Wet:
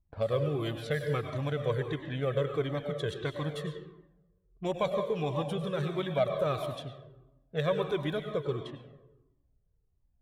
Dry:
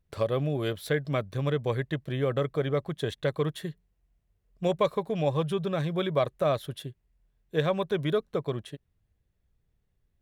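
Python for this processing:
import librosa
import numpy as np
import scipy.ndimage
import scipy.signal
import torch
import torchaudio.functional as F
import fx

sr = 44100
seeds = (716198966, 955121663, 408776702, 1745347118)

y = fx.rev_plate(x, sr, seeds[0], rt60_s=1.1, hf_ratio=0.9, predelay_ms=85, drr_db=6.0)
y = fx.env_lowpass(y, sr, base_hz=880.0, full_db=-25.0)
y = fx.comb_cascade(y, sr, direction='falling', hz=1.5)
y = F.gain(torch.from_numpy(y), 1.0).numpy()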